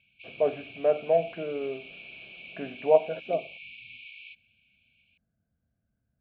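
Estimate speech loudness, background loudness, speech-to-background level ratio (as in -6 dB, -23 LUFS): -28.0 LUFS, -44.5 LUFS, 16.5 dB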